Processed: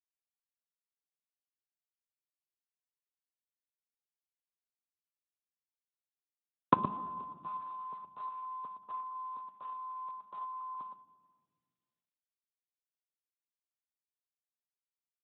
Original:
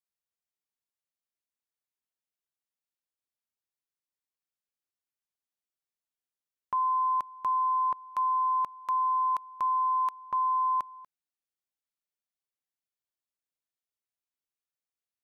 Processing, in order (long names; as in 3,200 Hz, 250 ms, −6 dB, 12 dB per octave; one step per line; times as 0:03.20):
camcorder AGC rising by 19 dB per second
noise gate −39 dBFS, range −46 dB
resonant band-pass 210 Hz, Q 1.8
single-tap delay 118 ms −9 dB
rectangular room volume 1,700 cubic metres, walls mixed, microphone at 0.35 metres
level +8.5 dB
Speex 8 kbit/s 8,000 Hz